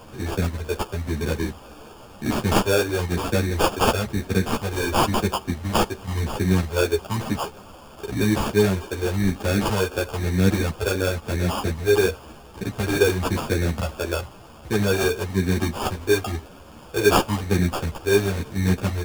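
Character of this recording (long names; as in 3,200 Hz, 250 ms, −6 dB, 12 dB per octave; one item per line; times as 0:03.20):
a quantiser's noise floor 8 bits, dither triangular
phaser sweep stages 4, 0.98 Hz, lowest notch 170–1,200 Hz
aliases and images of a low sample rate 2,000 Hz, jitter 0%
a shimmering, thickened sound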